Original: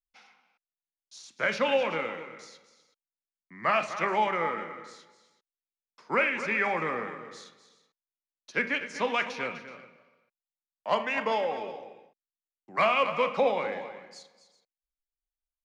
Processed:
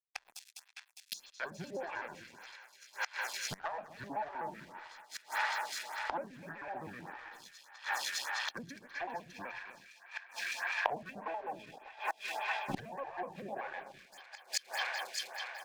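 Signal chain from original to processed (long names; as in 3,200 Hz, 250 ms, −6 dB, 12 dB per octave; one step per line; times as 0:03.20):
pitch shifter gated in a rhythm −5.5 semitones, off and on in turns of 63 ms
comb filter 1.2 ms, depth 61%
in parallel at −1 dB: downward compressor, threshold −40 dBFS, peak gain reduction 20 dB
on the sum: tilt shelving filter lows −4.5 dB, about 1,400 Hz
dead-zone distortion −48 dBFS
treble cut that deepens with the level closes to 600 Hz, closed at −23 dBFS
leveller curve on the samples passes 2
on a send: delay with a high-pass on its return 203 ms, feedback 77%, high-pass 1,700 Hz, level −6 dB
on the sum: gate with flip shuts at −30 dBFS, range −26 dB
phaser with staggered stages 1.7 Hz
level +12.5 dB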